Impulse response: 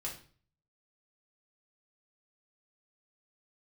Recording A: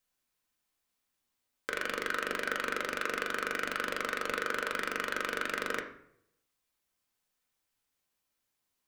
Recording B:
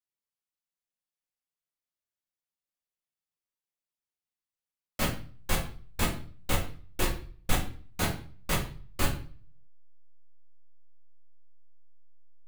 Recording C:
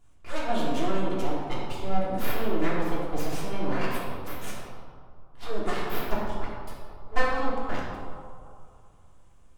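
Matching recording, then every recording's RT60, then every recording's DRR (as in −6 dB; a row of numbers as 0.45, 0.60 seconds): B; 0.70, 0.45, 2.5 seconds; 3.0, −3.5, −7.0 decibels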